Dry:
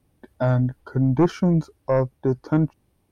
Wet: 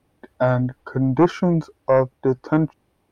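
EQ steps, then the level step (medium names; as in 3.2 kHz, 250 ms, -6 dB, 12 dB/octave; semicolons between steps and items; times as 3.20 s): bass shelf 270 Hz -11 dB; treble shelf 4.4 kHz -10.5 dB; +7.0 dB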